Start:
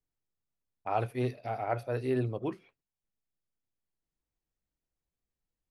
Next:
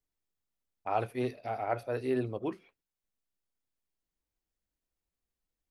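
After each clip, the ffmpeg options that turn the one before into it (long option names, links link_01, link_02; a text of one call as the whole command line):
ffmpeg -i in.wav -af "equalizer=frequency=130:width_type=o:width=0.51:gain=-7.5" out.wav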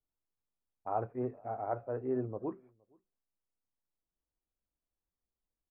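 ffmpeg -i in.wav -filter_complex "[0:a]lowpass=frequency=1300:width=0.5412,lowpass=frequency=1300:width=1.3066,asplit=2[link_01][link_02];[link_02]adelay=466.5,volume=-30dB,highshelf=frequency=4000:gain=-10.5[link_03];[link_01][link_03]amix=inputs=2:normalize=0,volume=-3dB" out.wav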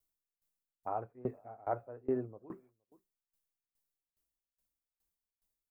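ffmpeg -i in.wav -af "crystalizer=i=2:c=0,aeval=exprs='val(0)*pow(10,-23*if(lt(mod(2.4*n/s,1),2*abs(2.4)/1000),1-mod(2.4*n/s,1)/(2*abs(2.4)/1000),(mod(2.4*n/s,1)-2*abs(2.4)/1000)/(1-2*abs(2.4)/1000))/20)':channel_layout=same,volume=3dB" out.wav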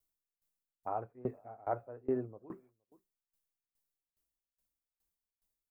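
ffmpeg -i in.wav -af anull out.wav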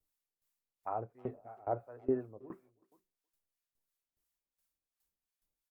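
ffmpeg -i in.wav -filter_complex "[0:a]asplit=2[link_01][link_02];[link_02]adelay=320,highpass=300,lowpass=3400,asoftclip=type=hard:threshold=-30.5dB,volume=-25dB[link_03];[link_01][link_03]amix=inputs=2:normalize=0,acrossover=split=750[link_04][link_05];[link_04]aeval=exprs='val(0)*(1-0.7/2+0.7/2*cos(2*PI*2.9*n/s))':channel_layout=same[link_06];[link_05]aeval=exprs='val(0)*(1-0.7/2-0.7/2*cos(2*PI*2.9*n/s))':channel_layout=same[link_07];[link_06][link_07]amix=inputs=2:normalize=0,volume=3dB" -ar 44100 -c:a wmav2 -b:a 128k out.wma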